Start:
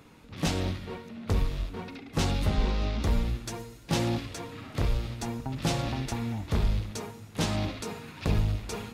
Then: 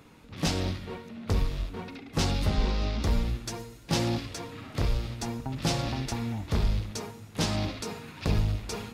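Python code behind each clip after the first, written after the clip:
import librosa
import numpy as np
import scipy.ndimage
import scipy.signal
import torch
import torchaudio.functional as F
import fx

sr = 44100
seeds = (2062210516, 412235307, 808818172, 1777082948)

y = fx.dynamic_eq(x, sr, hz=5000.0, q=2.5, threshold_db=-52.0, ratio=4.0, max_db=5)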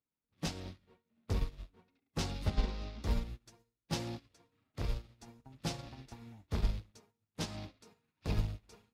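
y = fx.upward_expand(x, sr, threshold_db=-47.0, expansion=2.5)
y = F.gain(torch.from_numpy(y), -3.0).numpy()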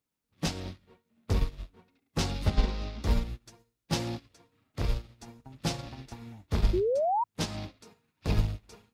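y = fx.spec_paint(x, sr, seeds[0], shape='rise', start_s=6.73, length_s=0.51, low_hz=340.0, high_hz=990.0, level_db=-33.0)
y = F.gain(torch.from_numpy(y), 6.5).numpy()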